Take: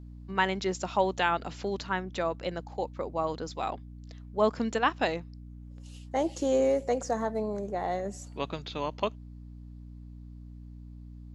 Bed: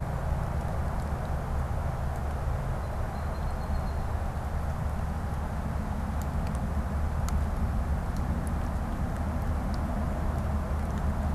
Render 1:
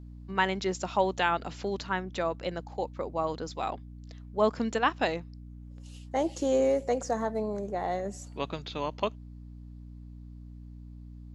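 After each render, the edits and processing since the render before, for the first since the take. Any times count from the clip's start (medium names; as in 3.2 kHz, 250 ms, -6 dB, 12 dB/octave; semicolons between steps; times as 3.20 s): no audible change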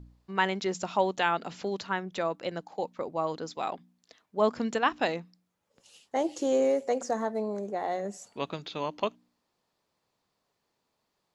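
de-hum 60 Hz, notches 5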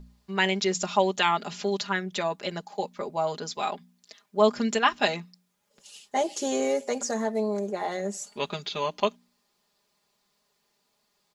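treble shelf 2.3 kHz +8.5 dB; comb 4.9 ms, depth 75%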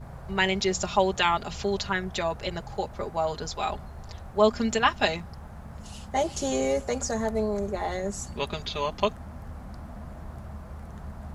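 add bed -10.5 dB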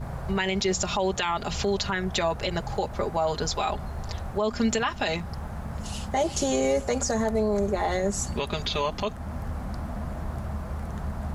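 in parallel at +3 dB: compression, threshold -32 dBFS, peak gain reduction 16.5 dB; on the sum: peak limiter -15.5 dBFS, peak gain reduction 11 dB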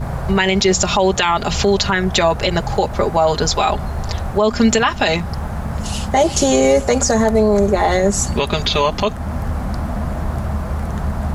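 trim +11 dB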